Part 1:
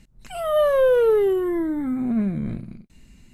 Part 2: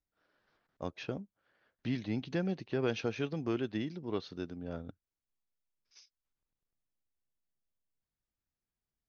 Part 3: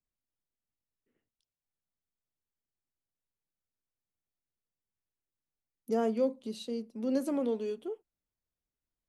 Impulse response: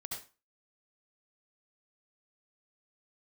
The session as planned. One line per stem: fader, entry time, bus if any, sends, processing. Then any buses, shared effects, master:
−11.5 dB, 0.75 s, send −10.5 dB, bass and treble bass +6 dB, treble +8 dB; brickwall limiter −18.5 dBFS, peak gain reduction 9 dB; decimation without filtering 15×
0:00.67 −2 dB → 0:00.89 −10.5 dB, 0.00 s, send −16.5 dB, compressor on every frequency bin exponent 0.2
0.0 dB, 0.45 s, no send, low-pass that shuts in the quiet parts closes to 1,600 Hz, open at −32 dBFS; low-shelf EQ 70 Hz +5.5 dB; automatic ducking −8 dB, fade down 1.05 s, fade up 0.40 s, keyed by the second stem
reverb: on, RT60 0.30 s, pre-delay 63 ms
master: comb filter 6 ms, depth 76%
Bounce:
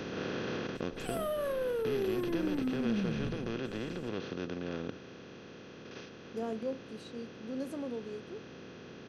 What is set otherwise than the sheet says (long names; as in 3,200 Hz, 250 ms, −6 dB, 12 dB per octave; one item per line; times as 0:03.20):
stem 1: missing decimation without filtering 15×
master: missing comb filter 6 ms, depth 76%